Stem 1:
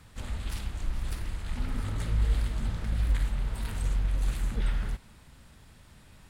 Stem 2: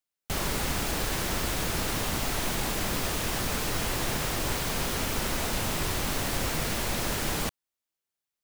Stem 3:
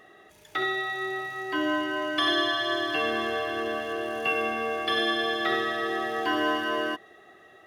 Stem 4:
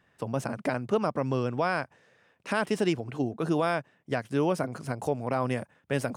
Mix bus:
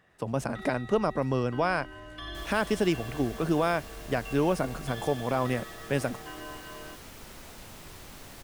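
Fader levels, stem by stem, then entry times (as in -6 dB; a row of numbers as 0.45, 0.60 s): -19.5, -17.0, -17.0, +0.5 dB; 0.10, 2.05, 0.00, 0.00 s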